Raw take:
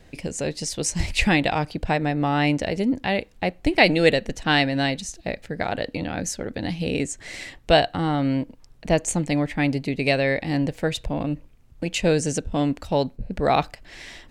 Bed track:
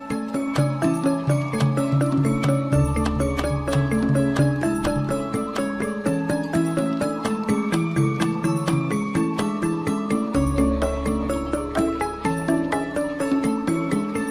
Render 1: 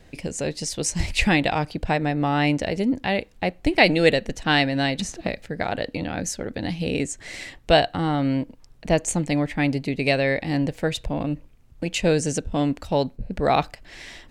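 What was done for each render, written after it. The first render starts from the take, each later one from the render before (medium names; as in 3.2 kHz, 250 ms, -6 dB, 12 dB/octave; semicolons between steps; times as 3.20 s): 4.99–5.43 s: three bands compressed up and down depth 100%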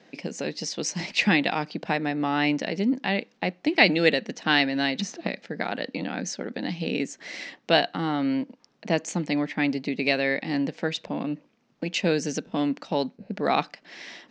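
elliptic band-pass 190–5800 Hz, stop band 40 dB; dynamic bell 620 Hz, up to -5 dB, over -34 dBFS, Q 1.2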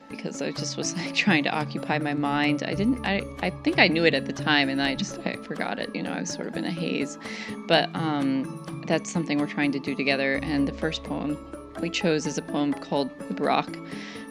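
add bed track -14.5 dB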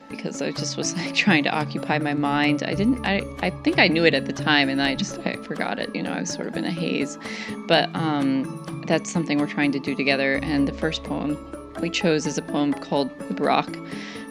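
trim +3 dB; peak limiter -3 dBFS, peak gain reduction 2.5 dB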